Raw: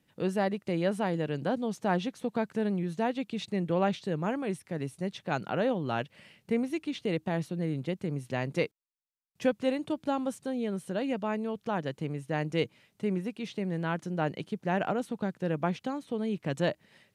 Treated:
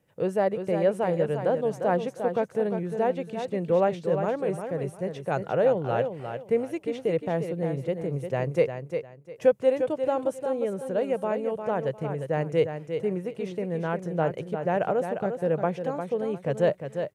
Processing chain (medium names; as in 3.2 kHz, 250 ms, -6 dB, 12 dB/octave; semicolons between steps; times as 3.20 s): graphic EQ 125/250/500/4000 Hz +5/-7/+10/-8 dB; on a send: feedback delay 352 ms, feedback 24%, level -7.5 dB